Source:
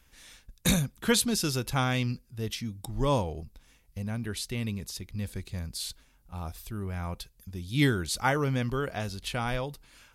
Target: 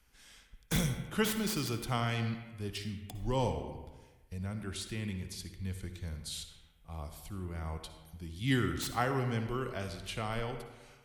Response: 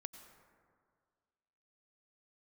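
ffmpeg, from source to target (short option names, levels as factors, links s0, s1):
-filter_complex "[0:a]acrossover=split=280|560|3200[s0][s1][s2][s3];[s3]aeval=exprs='(mod(16.8*val(0)+1,2)-1)/16.8':c=same[s4];[s0][s1][s2][s4]amix=inputs=4:normalize=0[s5];[1:a]atrim=start_sample=2205,asetrate=79380,aresample=44100[s6];[s5][s6]afir=irnorm=-1:irlink=0,asetrate=40517,aresample=44100,volume=1.68"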